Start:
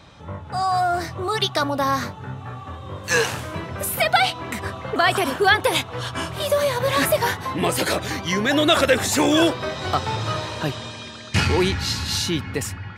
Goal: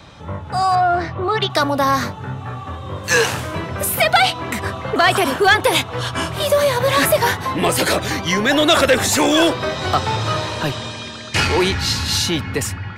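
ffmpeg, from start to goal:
-filter_complex "[0:a]acrossover=split=380|810|2200[s0][s1][s2][s3];[s0]asoftclip=type=hard:threshold=0.0531[s4];[s4][s1][s2][s3]amix=inputs=4:normalize=0,asettb=1/sr,asplit=3[s5][s6][s7];[s5]atrim=end=0.754[s8];[s6]atrim=start=0.75:end=1.5,asetpts=PTS-STARTPTS,afade=t=in:d=0.004:c=qsin,afade=t=out:st=0.746:d=0.004:c=qsin,lowpass=3000[s9];[s7]atrim=start=1.496[s10];[s8][s9]acrossfade=d=0.004:c1=hsin:c2=qsin[s11];[s11][s10]acrossfade=d=0.004:c1=qsin:c2=hsin,asoftclip=type=tanh:threshold=0.316,volume=1.88"

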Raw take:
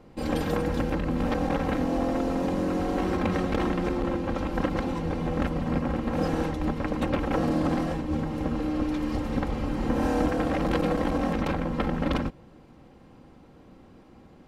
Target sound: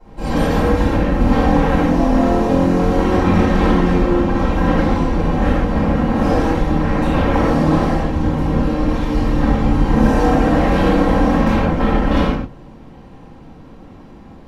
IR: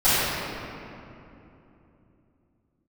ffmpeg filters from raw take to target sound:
-filter_complex "[1:a]atrim=start_sample=2205,afade=t=out:st=0.27:d=0.01,atrim=end_sample=12348,asetrate=52920,aresample=44100[s0];[0:a][s0]afir=irnorm=-1:irlink=0,volume=0.447"

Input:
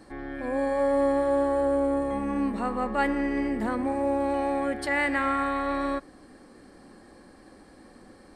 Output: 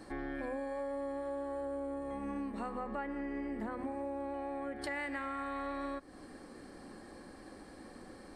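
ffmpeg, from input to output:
-filter_complex "[0:a]asettb=1/sr,asplit=3[s0][s1][s2];[s0]atrim=end=2.774[s3];[s1]atrim=start=2.77:end=4.84,asetpts=PTS-STARTPTS,afade=t=in:d=0.004:c=qsin,afade=t=out:st=2.066:d=0.004:c=qsin,acrossover=split=2500[s4][s5];[s5]acompressor=threshold=0.00178:ratio=4:attack=1:release=60[s6];[s4][s6]amix=inputs=2:normalize=0[s7];[s2]atrim=start=4.836[s8];[s3][s7]acrossfade=d=0.004:c1=hsin:c2=qsin[s9];[s9][s8]acrossfade=d=0.004:c1=qsin:c2=hsin,bandreject=f=50:t=h:w=6,bandreject=f=100:t=h:w=6,bandreject=f=150:t=h:w=6,bandreject=f=200:t=h:w=6,bandreject=f=250:t=h:w=6,acompressor=threshold=0.0158:ratio=10"

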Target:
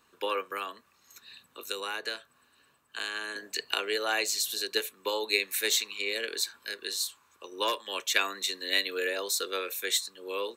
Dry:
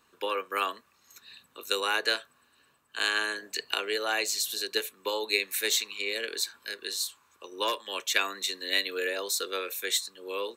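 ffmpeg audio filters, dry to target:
-filter_complex "[0:a]asettb=1/sr,asplit=3[s0][s1][s2];[s0]atrim=end=0.514[s3];[s1]atrim=start=0.51:end=3.36,asetpts=PTS-STARTPTS,afade=t=in:d=0.004:c=qsin,afade=t=out:st=2.846:d=0.004:c=qsin,acrossover=split=180[s4][s5];[s5]acompressor=threshold=0.0178:ratio=2.5[s6];[s4][s6]amix=inputs=2:normalize=0[s7];[s2]atrim=start=3.356[s8];[s3][s7]acrossfade=d=0.004:c1=hsin:c2=qsin[s9];[s9][s8]acrossfade=d=0.004:c1=qsin:c2=hsin"

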